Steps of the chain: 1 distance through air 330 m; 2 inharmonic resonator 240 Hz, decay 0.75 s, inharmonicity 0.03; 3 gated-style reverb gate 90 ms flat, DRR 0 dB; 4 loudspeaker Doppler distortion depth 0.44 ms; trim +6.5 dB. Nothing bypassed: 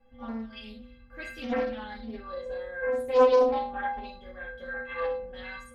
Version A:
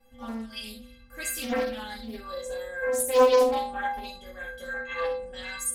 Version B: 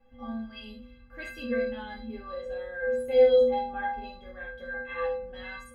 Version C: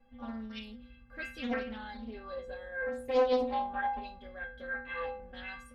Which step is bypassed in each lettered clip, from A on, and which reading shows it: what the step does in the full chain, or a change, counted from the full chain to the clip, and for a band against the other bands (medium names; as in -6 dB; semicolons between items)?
1, 4 kHz band +6.5 dB; 4, 1 kHz band -4.0 dB; 3, momentary loudness spread change -5 LU